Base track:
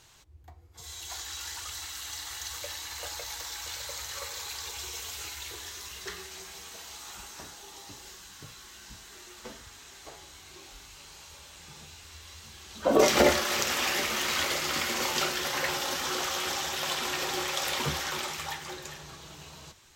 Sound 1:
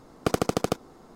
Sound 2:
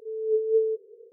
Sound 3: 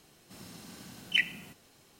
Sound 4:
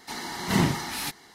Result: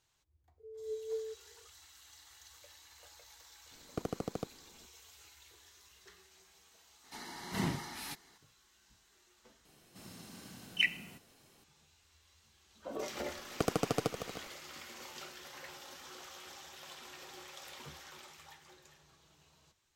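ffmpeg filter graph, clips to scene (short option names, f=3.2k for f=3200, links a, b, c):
-filter_complex "[1:a]asplit=2[a][b];[0:a]volume=-19.5dB[c];[a]tiltshelf=f=970:g=4.5[d];[b]aecho=1:1:158|295|311:0.299|0.112|0.211[e];[c]asplit=2[f][g];[f]atrim=end=9.654[h];[3:a]atrim=end=1.99,asetpts=PTS-STARTPTS,volume=-3dB[i];[g]atrim=start=11.636[j];[2:a]atrim=end=1.12,asetpts=PTS-STARTPTS,volume=-16dB,afade=t=in:d=0.004:c=hsin,afade=t=out:st=1.116:d=0.004:c=hsin,adelay=580[k];[d]atrim=end=1.15,asetpts=PTS-STARTPTS,volume=-16.5dB,afade=t=in:d=0.004:c=hsin,afade=t=out:st=1.146:d=0.004:c=hsin,adelay=3710[l];[4:a]atrim=end=1.34,asetpts=PTS-STARTPTS,volume=-12dB,afade=t=in:d=0.004:c=hsin,afade=t=out:st=1.336:d=0.004:c=hsin,adelay=7040[m];[e]atrim=end=1.15,asetpts=PTS-STARTPTS,volume=-8dB,afade=t=in:d=0.004:c=hsin,afade=t=out:st=1.146:d=0.004:c=hsin,adelay=13340[n];[h][i]acrossfade=d=0.004:c1=hsin:c2=hsin[o];[o][j]acrossfade=d=0.004:c1=hsin:c2=hsin[p];[p][k][l][m][n]amix=inputs=5:normalize=0"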